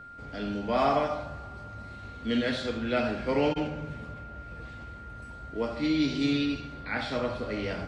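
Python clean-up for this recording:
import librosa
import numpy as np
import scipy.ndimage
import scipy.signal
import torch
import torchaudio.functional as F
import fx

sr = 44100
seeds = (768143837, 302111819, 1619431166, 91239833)

y = fx.notch(x, sr, hz=1400.0, q=30.0)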